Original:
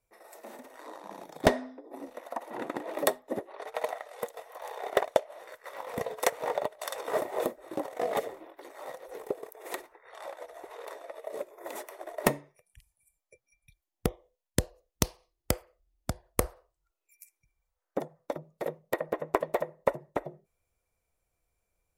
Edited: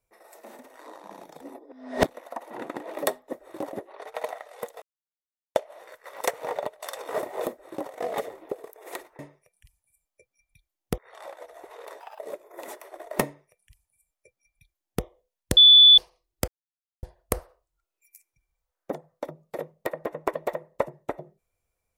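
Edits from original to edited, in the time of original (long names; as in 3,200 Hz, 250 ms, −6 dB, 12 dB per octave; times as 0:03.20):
0:01.41–0:02.09: reverse
0:04.42–0:05.15: silence
0:05.81–0:06.20: remove
0:07.50–0:07.90: duplicate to 0:03.33
0:08.48–0:09.28: remove
0:11.00–0:11.26: play speed 138%
0:12.32–0:14.11: duplicate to 0:09.98
0:14.64–0:15.05: beep over 3,470 Hz −9 dBFS
0:15.55–0:16.10: silence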